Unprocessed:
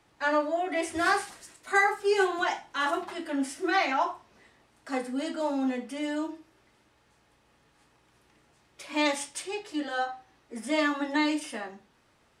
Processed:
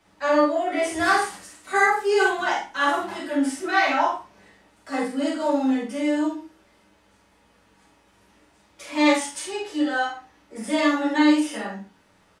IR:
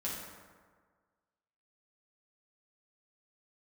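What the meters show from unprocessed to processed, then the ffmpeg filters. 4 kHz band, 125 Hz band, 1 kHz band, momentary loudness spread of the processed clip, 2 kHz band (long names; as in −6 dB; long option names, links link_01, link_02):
+4.5 dB, can't be measured, +5.5 dB, 12 LU, +5.5 dB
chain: -filter_complex "[0:a]asplit=2[link_01][link_02];[link_02]adelay=46,volume=-7.5dB[link_03];[link_01][link_03]amix=inputs=2:normalize=0[link_04];[1:a]atrim=start_sample=2205,atrim=end_sample=3528[link_05];[link_04][link_05]afir=irnorm=-1:irlink=0,volume=4dB"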